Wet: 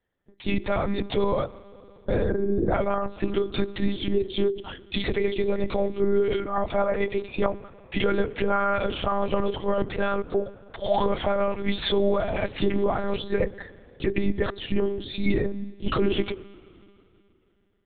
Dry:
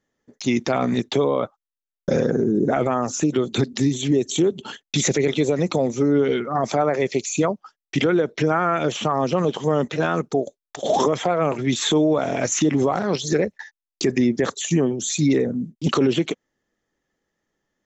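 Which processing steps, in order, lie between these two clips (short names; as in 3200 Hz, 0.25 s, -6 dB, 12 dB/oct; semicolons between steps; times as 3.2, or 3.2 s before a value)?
notches 50/100/150/200/250/300/350/400/450 Hz; reverb RT60 3.0 s, pre-delay 45 ms, DRR 19 dB; monotone LPC vocoder at 8 kHz 200 Hz; gain -3 dB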